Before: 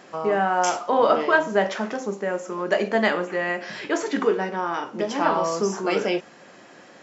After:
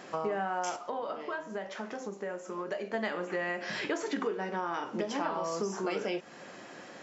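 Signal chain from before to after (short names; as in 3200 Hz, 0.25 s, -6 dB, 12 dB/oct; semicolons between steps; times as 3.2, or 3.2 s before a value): compressor 6:1, threshold -30 dBFS, peak gain reduction 16 dB; 0.76–2.94 flange 1 Hz, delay 6.4 ms, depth 6.3 ms, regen +73%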